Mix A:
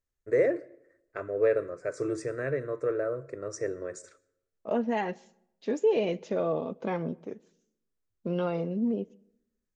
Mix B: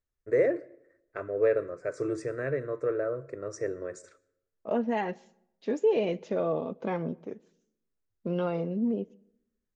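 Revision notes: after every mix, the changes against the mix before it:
master: add treble shelf 5.4 kHz -6.5 dB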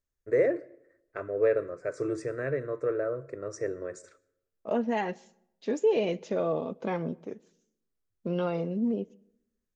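second voice: add treble shelf 5.5 kHz +10.5 dB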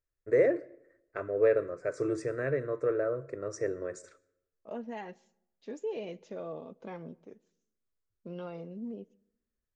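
second voice -11.5 dB

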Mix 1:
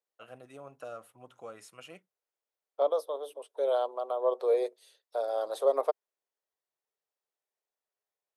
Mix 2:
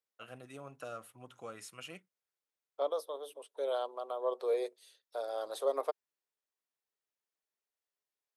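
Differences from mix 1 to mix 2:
first voice +4.0 dB; master: add peaking EQ 630 Hz -7 dB 1.7 oct

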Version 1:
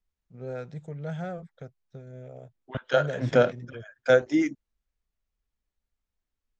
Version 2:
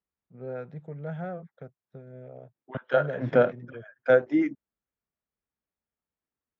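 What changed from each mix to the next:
master: add band-pass 130–2000 Hz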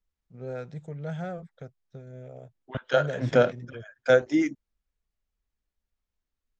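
master: remove band-pass 130–2000 Hz

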